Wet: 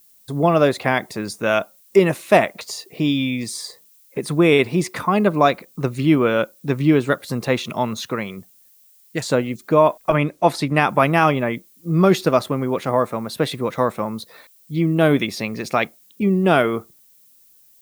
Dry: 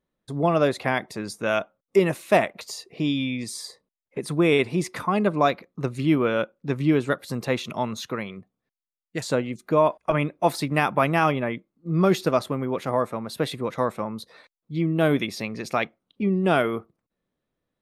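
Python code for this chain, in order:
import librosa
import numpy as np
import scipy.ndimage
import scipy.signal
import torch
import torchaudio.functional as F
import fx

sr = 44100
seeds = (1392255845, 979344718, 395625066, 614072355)

y = fx.dmg_noise_colour(x, sr, seeds[0], colour='violet', level_db=-58.0)
y = fx.high_shelf(y, sr, hz=11000.0, db=-11.0, at=(10.17, 10.89))
y = F.gain(torch.from_numpy(y), 5.0).numpy()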